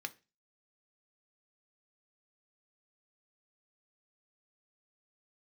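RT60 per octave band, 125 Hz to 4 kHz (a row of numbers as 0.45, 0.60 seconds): 0.40, 0.35, 0.30, 0.25, 0.30, 0.30 seconds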